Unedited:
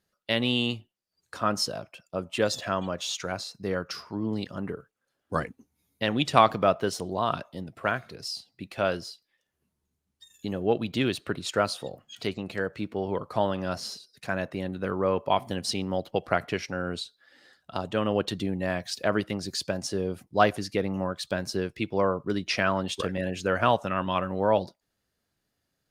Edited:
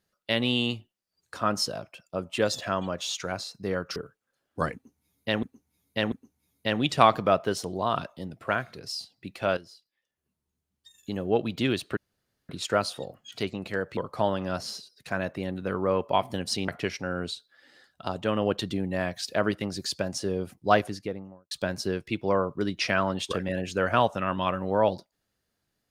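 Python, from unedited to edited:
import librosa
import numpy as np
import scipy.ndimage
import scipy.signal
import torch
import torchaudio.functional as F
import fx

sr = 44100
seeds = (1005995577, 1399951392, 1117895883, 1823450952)

y = fx.studio_fade_out(x, sr, start_s=20.39, length_s=0.81)
y = fx.edit(y, sr, fx.cut(start_s=3.96, length_s=0.74),
    fx.repeat(start_s=5.48, length_s=0.69, count=3),
    fx.fade_in_from(start_s=8.93, length_s=1.67, floor_db=-13.0),
    fx.insert_room_tone(at_s=11.33, length_s=0.52),
    fx.cut(start_s=12.81, length_s=0.33),
    fx.cut(start_s=15.85, length_s=0.52), tone=tone)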